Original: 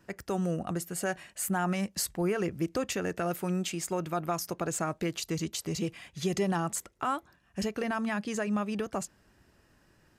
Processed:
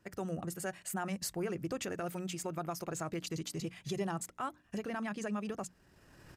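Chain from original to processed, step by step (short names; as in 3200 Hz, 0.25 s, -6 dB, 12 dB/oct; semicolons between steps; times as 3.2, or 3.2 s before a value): recorder AGC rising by 14 dB/s; tempo 1.6×; bell 120 Hz +4 dB 0.6 oct; notches 60/120/180/240/300 Hz; gain -6.5 dB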